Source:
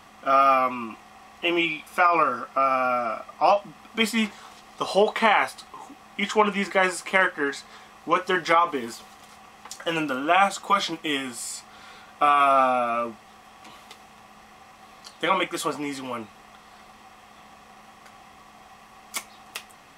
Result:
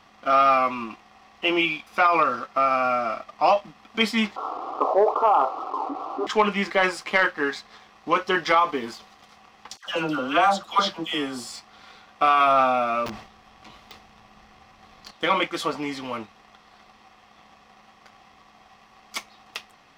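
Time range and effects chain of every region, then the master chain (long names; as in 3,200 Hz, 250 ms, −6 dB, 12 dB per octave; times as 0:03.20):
0:04.36–0:06.27: linear-phase brick-wall band-pass 260–1,400 Hz + envelope flattener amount 50%
0:09.77–0:11.52: parametric band 2,200 Hz −7.5 dB 0.39 octaves + all-pass dispersion lows, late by 97 ms, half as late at 1,200 Hz
0:13.06–0:15.11: low-shelf EQ 140 Hz +10.5 dB + wrap-around overflow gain 27 dB + level that may fall only so fast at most 80 dB per second
whole clip: leveller curve on the samples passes 1; high shelf with overshoot 6,600 Hz −8 dB, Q 1.5; level −3 dB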